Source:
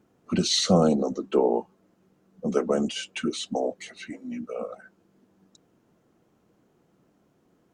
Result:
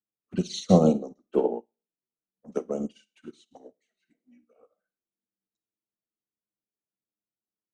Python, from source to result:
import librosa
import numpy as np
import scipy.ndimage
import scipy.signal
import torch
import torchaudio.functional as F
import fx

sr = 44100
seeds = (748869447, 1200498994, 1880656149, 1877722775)

y = fx.env_flanger(x, sr, rest_ms=9.7, full_db=-20.0)
y = fx.rev_schroeder(y, sr, rt60_s=0.41, comb_ms=38, drr_db=10.0)
y = fx.upward_expand(y, sr, threshold_db=-42.0, expansion=2.5)
y = y * librosa.db_to_amplitude(4.0)